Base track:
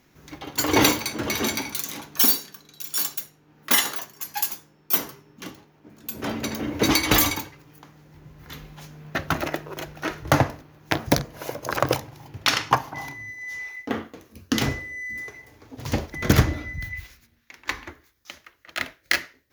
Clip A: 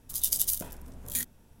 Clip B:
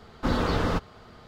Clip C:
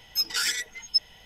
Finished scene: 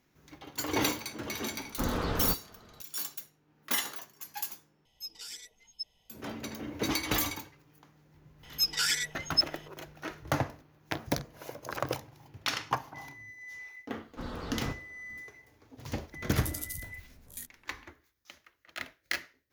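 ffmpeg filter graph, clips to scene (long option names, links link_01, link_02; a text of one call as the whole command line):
ffmpeg -i bed.wav -i cue0.wav -i cue1.wav -i cue2.wav -filter_complex "[2:a]asplit=2[link_01][link_02];[3:a]asplit=2[link_03][link_04];[0:a]volume=-11dB[link_05];[link_03]equalizer=frequency=1600:width_type=o:width=0.75:gain=-14.5[link_06];[link_05]asplit=2[link_07][link_08];[link_07]atrim=end=4.854[link_09];[link_06]atrim=end=1.25,asetpts=PTS-STARTPTS,volume=-15.5dB[link_10];[link_08]atrim=start=6.096[link_11];[link_01]atrim=end=1.27,asetpts=PTS-STARTPTS,volume=-6.5dB,afade=type=in:duration=0.004:curve=hsin,afade=type=out:start_time=1.266:duration=0.004:curve=hsin,adelay=1550[link_12];[link_04]atrim=end=1.25,asetpts=PTS-STARTPTS,volume=-2dB,afade=type=in:duration=0.004:curve=hsin,afade=type=out:start_time=1.246:duration=0.004:curve=hsin,adelay=8430[link_13];[link_02]atrim=end=1.27,asetpts=PTS-STARTPTS,volume=-14.5dB,afade=type=in:duration=0.004:curve=hsin,afade=type=out:start_time=1.266:duration=0.004:curve=hsin,adelay=13940[link_14];[1:a]atrim=end=1.6,asetpts=PTS-STARTPTS,volume=-12dB,afade=type=in:duration=0.004:curve=hsin,afade=type=out:start_time=1.596:duration=0.004:curve=hsin,adelay=16220[link_15];[link_09][link_10]acrossfade=duration=0.004:curve1=hsin:curve2=hsin[link_16];[link_16][link_11]acrossfade=duration=0.004:curve1=hsin:curve2=hsin[link_17];[link_17][link_12][link_13][link_14][link_15]amix=inputs=5:normalize=0" out.wav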